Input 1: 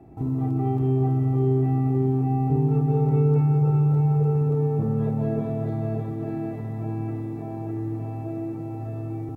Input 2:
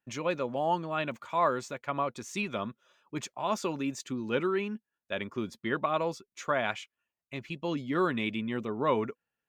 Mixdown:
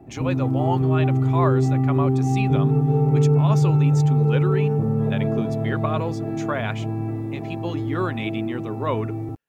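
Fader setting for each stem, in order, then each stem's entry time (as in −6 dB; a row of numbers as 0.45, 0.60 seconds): +2.5, +2.0 decibels; 0.00, 0.00 seconds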